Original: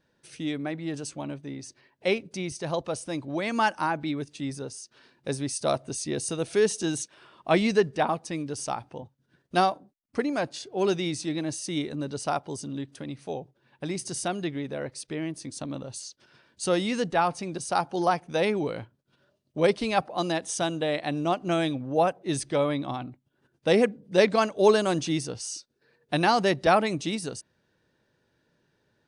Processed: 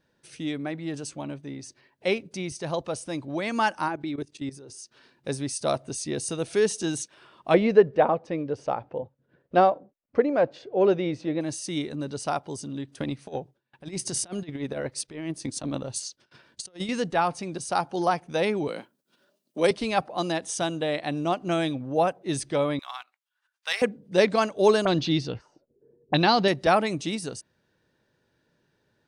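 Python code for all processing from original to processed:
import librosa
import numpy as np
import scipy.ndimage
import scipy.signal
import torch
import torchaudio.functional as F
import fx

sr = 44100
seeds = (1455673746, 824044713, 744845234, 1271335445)

y = fx.chain(x, sr, fx.peak_eq(hz=360.0, db=10.0, octaves=0.29),
    fx.level_steps(step_db=15), at=(3.88, 4.79))
y = fx.chain(y, sr, fx.lowpass(hz=2400.0, slope=12),
    fx.peak_eq(hz=520.0, db=11.0, octaves=0.62), at=(7.54, 11.41))
y = fx.chain(y, sr, fx.transient(attack_db=9, sustain_db=-4),
    fx.gate_hold(open_db=-51.0, close_db=-60.0, hold_ms=71.0, range_db=-21, attack_ms=1.4, release_ms=100.0),
    fx.over_compress(threshold_db=-32.0, ratio=-0.5), at=(12.98, 16.89))
y = fx.chain(y, sr, fx.steep_highpass(hz=180.0, slope=36),
    fx.high_shelf(hz=6400.0, db=12.0), at=(18.68, 19.71))
y = fx.chain(y, sr, fx.highpass(hz=1100.0, slope=24),
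    fx.leveller(passes=1), at=(22.79, 23.82))
y = fx.chain(y, sr, fx.tilt_eq(slope=-1.5),
    fx.envelope_lowpass(base_hz=370.0, top_hz=4100.0, q=3.5, full_db=-23.5, direction='up'), at=(24.85, 26.48))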